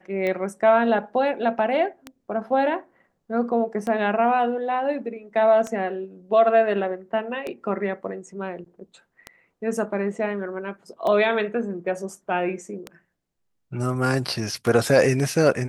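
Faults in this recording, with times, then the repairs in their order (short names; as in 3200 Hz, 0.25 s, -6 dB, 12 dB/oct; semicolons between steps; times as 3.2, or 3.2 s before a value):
tick 33 1/3 rpm -16 dBFS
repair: de-click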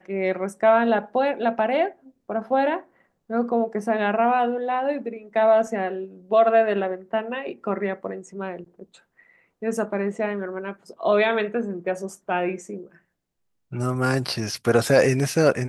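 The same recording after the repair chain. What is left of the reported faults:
none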